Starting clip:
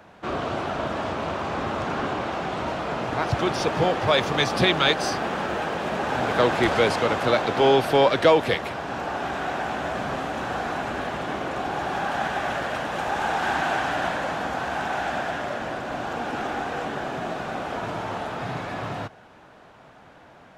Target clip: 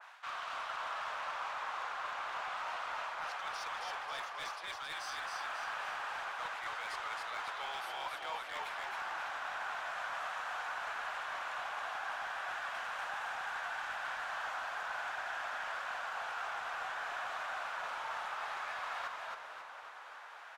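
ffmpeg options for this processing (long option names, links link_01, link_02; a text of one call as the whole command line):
ffmpeg -i in.wav -filter_complex "[0:a]highpass=frequency=1000:width=0.5412,highpass=frequency=1000:width=1.3066,areverse,acompressor=threshold=-40dB:ratio=12,areverse,asoftclip=type=hard:threshold=-37.5dB,asplit=2[link_01][link_02];[link_02]asplit=7[link_03][link_04][link_05][link_06][link_07][link_08][link_09];[link_03]adelay=270,afreqshift=-49,volume=-3dB[link_10];[link_04]adelay=540,afreqshift=-98,volume=-8.7dB[link_11];[link_05]adelay=810,afreqshift=-147,volume=-14.4dB[link_12];[link_06]adelay=1080,afreqshift=-196,volume=-20dB[link_13];[link_07]adelay=1350,afreqshift=-245,volume=-25.7dB[link_14];[link_08]adelay=1620,afreqshift=-294,volume=-31.4dB[link_15];[link_09]adelay=1890,afreqshift=-343,volume=-37.1dB[link_16];[link_10][link_11][link_12][link_13][link_14][link_15][link_16]amix=inputs=7:normalize=0[link_17];[link_01][link_17]amix=inputs=2:normalize=0,adynamicequalizer=threshold=0.00158:dfrequency=2000:dqfactor=0.7:tfrequency=2000:tqfactor=0.7:attack=5:release=100:ratio=0.375:range=2.5:mode=cutabove:tftype=highshelf,volume=2.5dB" out.wav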